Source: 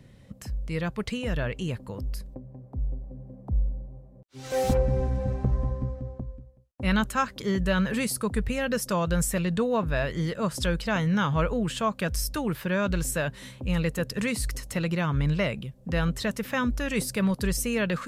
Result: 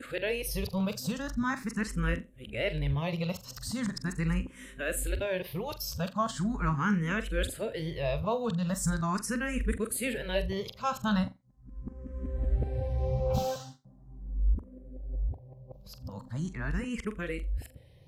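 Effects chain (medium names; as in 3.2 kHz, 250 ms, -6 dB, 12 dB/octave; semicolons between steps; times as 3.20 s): reverse the whole clip; flutter echo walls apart 7.4 m, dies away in 0.22 s; barber-pole phaser +0.4 Hz; trim -2 dB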